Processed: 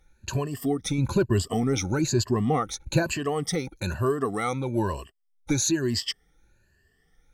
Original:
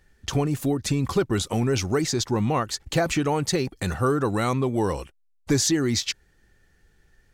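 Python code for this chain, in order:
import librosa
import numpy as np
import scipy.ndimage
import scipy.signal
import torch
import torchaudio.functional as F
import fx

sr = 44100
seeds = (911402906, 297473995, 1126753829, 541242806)

y = fx.spec_ripple(x, sr, per_octave=1.4, drift_hz=1.1, depth_db=18)
y = fx.low_shelf(y, sr, hz=460.0, db=5.5, at=(0.98, 3.03))
y = y * 10.0 ** (-6.5 / 20.0)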